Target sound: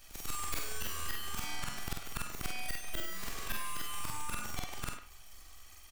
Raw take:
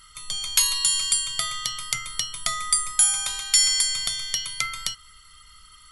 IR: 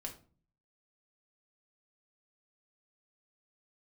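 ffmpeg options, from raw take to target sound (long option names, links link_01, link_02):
-filter_complex "[0:a]afftfilt=real='re':imag='-im':win_size=4096:overlap=0.75,acrossover=split=120[link_01][link_02];[link_02]aeval=exprs='abs(val(0))':channel_layout=same[link_03];[link_01][link_03]amix=inputs=2:normalize=0,acompressor=threshold=-31dB:ratio=12,asoftclip=type=tanh:threshold=-21dB,asplit=2[link_04][link_05];[link_05]adelay=100,highpass=300,lowpass=3400,asoftclip=type=hard:threshold=-32dB,volume=-9dB[link_06];[link_04][link_06]amix=inputs=2:normalize=0,adynamicequalizer=threshold=0.00178:dfrequency=3500:dqfactor=0.7:tfrequency=3500:tqfactor=0.7:attack=5:release=100:ratio=0.375:range=3:mode=cutabove:tftype=highshelf,volume=2.5dB"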